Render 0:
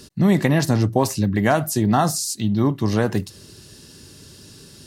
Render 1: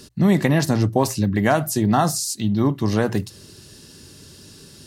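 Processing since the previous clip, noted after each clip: hum notches 60/120 Hz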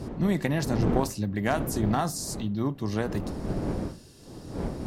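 wind noise 300 Hz -24 dBFS; Chebyshev shaper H 3 -20 dB, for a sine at -3 dBFS; trim -6.5 dB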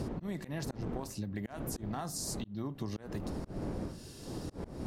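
slow attack 386 ms; compression 12:1, threshold -37 dBFS, peak gain reduction 16.5 dB; trim +3 dB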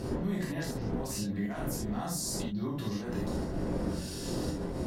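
peak limiter -35.5 dBFS, peak gain reduction 12 dB; gated-style reverb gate 100 ms flat, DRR -5.5 dB; trim +4 dB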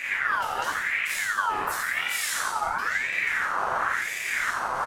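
on a send: feedback delay 89 ms, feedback 52%, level -4 dB; on the sum: ring modulator with a swept carrier 1.6 kHz, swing 35%, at 0.95 Hz; trim +7 dB

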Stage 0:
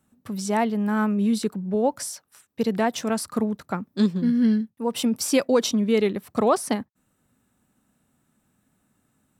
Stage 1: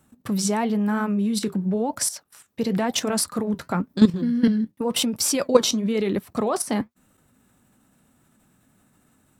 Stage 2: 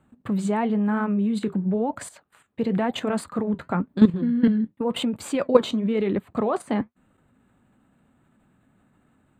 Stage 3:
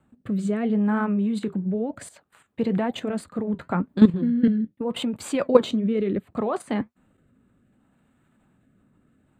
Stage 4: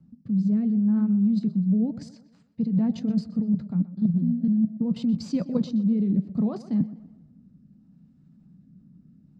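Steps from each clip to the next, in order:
in parallel at +1 dB: peak limiter -18.5 dBFS, peak gain reduction 10 dB; on the sum: level held to a coarse grid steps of 13 dB; flange 0.97 Hz, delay 1.8 ms, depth 7.5 ms, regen -67%; trim +8 dB
boxcar filter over 8 samples
rotary cabinet horn 0.7 Hz; trim +1 dB
FFT filter 110 Hz 0 dB, 170 Hz +14 dB, 390 Hz -10 dB, 640 Hz -13 dB, 1.5 kHz -19 dB, 2.4 kHz -17 dB, 3.4 kHz -16 dB, 5.2 kHz +5 dB, 8.8 kHz -27 dB; reverse; compression 20:1, threshold -22 dBFS, peak gain reduction 22 dB; reverse; tape echo 124 ms, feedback 50%, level -15 dB, low-pass 4.2 kHz; trim +2.5 dB

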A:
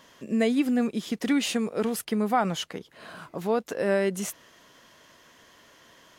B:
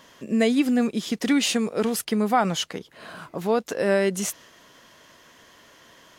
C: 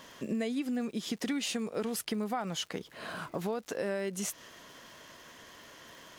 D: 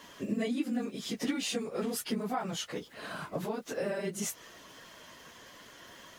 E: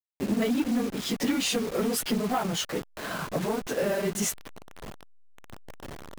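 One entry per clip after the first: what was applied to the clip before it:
dynamic bell 5.5 kHz, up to +4 dB, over -47 dBFS, Q 0.73; trim +3 dB
compression 5:1, threshold -32 dBFS, peak gain reduction 15 dB; crackle 160 per s -47 dBFS
phase randomisation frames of 50 ms
send-on-delta sampling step -40.5 dBFS; in parallel at -7 dB: wavefolder -30.5 dBFS; on the sum: trim +4.5 dB

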